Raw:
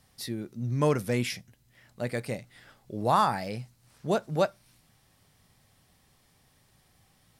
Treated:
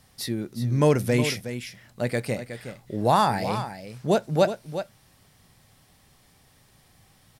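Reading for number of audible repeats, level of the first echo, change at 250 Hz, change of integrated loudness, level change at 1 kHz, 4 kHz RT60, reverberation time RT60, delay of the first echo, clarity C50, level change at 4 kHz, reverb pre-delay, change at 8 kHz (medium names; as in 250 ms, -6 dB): 1, -10.5 dB, +6.0 dB, +4.5 dB, +3.5 dB, no reverb, no reverb, 366 ms, no reverb, +6.0 dB, no reverb, +6.0 dB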